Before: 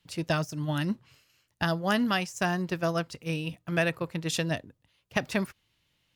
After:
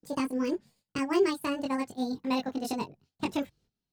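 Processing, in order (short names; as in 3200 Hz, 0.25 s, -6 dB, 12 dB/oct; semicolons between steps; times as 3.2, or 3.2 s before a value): speed glide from 173% -> 141%; gate -59 dBFS, range -14 dB; chorus voices 4, 0.33 Hz, delay 21 ms, depth 1.8 ms; tilt shelf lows +5.5 dB, about 760 Hz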